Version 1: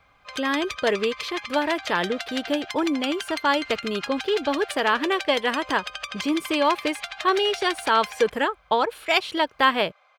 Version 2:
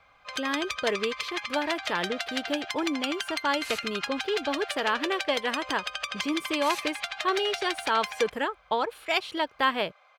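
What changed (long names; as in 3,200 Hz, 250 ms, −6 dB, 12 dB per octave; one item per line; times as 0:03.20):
speech −5.5 dB
second sound: remove head-to-tape spacing loss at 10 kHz 33 dB
reverb: on, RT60 0.50 s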